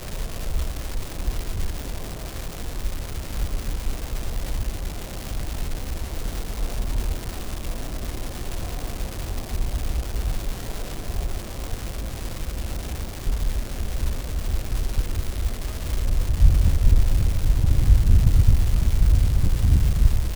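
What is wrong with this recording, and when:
crackle 580/s -25 dBFS

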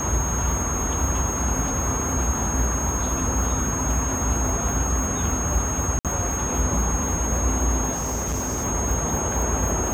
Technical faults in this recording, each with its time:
tone 6500 Hz -27 dBFS
5.99–6.05 gap 57 ms
7.92–8.65 clipped -22.5 dBFS

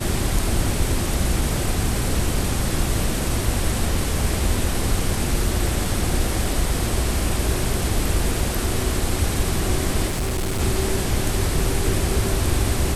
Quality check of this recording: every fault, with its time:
10.07–10.61 clipped -20 dBFS

